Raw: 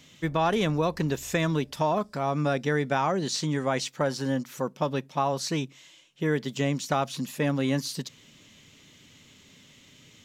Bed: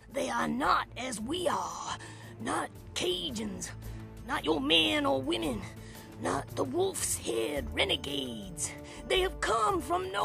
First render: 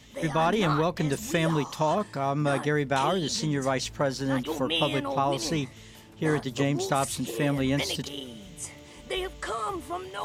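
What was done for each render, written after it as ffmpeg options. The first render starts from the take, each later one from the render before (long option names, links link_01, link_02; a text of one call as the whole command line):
ffmpeg -i in.wav -i bed.wav -filter_complex "[1:a]volume=-3.5dB[link_01];[0:a][link_01]amix=inputs=2:normalize=0" out.wav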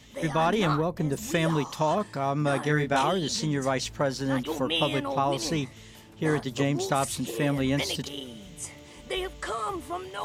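ffmpeg -i in.wav -filter_complex "[0:a]asplit=3[link_01][link_02][link_03];[link_01]afade=type=out:start_time=0.75:duration=0.02[link_04];[link_02]equalizer=frequency=3400:width=0.44:gain=-12,afade=type=in:start_time=0.75:duration=0.02,afade=type=out:start_time=1.16:duration=0.02[link_05];[link_03]afade=type=in:start_time=1.16:duration=0.02[link_06];[link_04][link_05][link_06]amix=inputs=3:normalize=0,asettb=1/sr,asplit=3[link_07][link_08][link_09];[link_07]atrim=end=2.624[link_10];[link_08]atrim=start=2.62:end=3.03,asetpts=PTS-STARTPTS,afade=type=in:duration=0.004:curve=qsin,afade=type=out:start_time=0.406:duration=0.004:curve=qsin,asplit=2[link_11][link_12];[link_12]adelay=26,volume=-3.5dB[link_13];[link_11][link_13]amix=inputs=2:normalize=0,atrim=end_sample=18081[link_14];[link_09]atrim=start=3.026[link_15];[link_10][link_14]acrossfade=duration=0.004:curve1=hsin:curve2=qsin[link_16];[link_16][link_15]acrossfade=duration=0.004:curve1=qsin:curve2=hsin" out.wav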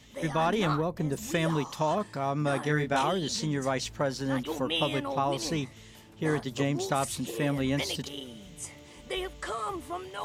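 ffmpeg -i in.wav -af "volume=-2.5dB" out.wav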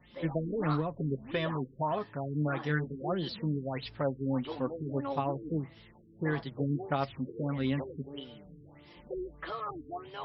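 ffmpeg -i in.wav -af "flanger=delay=5.5:depth=2.6:regen=35:speed=0.33:shape=triangular,afftfilt=real='re*lt(b*sr/1024,460*pow(5700/460,0.5+0.5*sin(2*PI*1.6*pts/sr)))':imag='im*lt(b*sr/1024,460*pow(5700/460,0.5+0.5*sin(2*PI*1.6*pts/sr)))':win_size=1024:overlap=0.75" out.wav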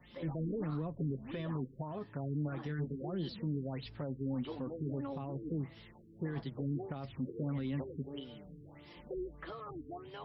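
ffmpeg -i in.wav -filter_complex "[0:a]alimiter=level_in=4dB:limit=-24dB:level=0:latency=1:release=17,volume=-4dB,acrossover=split=400[link_01][link_02];[link_02]acompressor=threshold=-49dB:ratio=3[link_03];[link_01][link_03]amix=inputs=2:normalize=0" out.wav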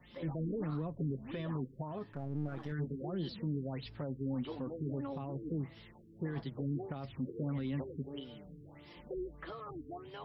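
ffmpeg -i in.wav -filter_complex "[0:a]asettb=1/sr,asplit=3[link_01][link_02][link_03];[link_01]atrim=end=2.124[link_04];[link_02]atrim=start=2.12:end=2.72,asetpts=PTS-STARTPTS,afade=type=in:duration=0.004:curve=qsin,afade=type=out:start_time=0.596:duration=0.004:curve=qsin,aeval=exprs='if(lt(val(0),0),0.447*val(0),val(0))':channel_layout=same[link_05];[link_03]atrim=start=2.716[link_06];[link_04][link_05]acrossfade=duration=0.004:curve1=hsin:curve2=qsin[link_07];[link_07][link_06]acrossfade=duration=0.004:curve1=qsin:curve2=hsin" out.wav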